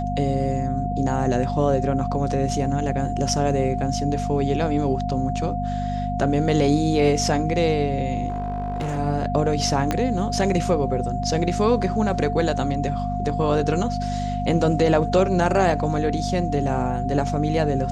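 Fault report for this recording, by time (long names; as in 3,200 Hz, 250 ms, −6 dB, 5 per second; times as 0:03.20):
mains hum 50 Hz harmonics 5 −27 dBFS
whistle 710 Hz −27 dBFS
0:08.28–0:08.99: clipping −22.5 dBFS
0:09.91: click −8 dBFS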